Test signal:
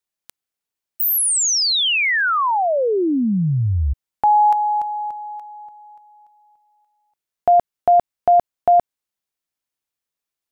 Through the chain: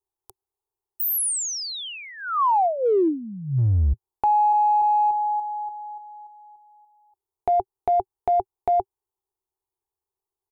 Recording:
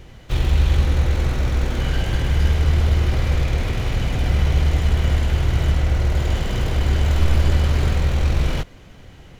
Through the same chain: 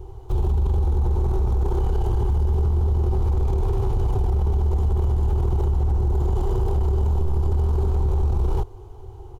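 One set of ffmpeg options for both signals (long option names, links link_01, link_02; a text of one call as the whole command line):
ffmpeg -i in.wav -af "firequalizer=gain_entry='entry(110,0);entry(160,-22);entry(260,-21);entry(380,8);entry(570,-18);entry(810,3);entry(1800,-29);entry(3100,-21);entry(9500,-11)':delay=0.05:min_phase=1,acompressor=threshold=-22dB:ratio=12:attack=0.78:release=25:knee=1:detection=rms,volume=5.5dB" out.wav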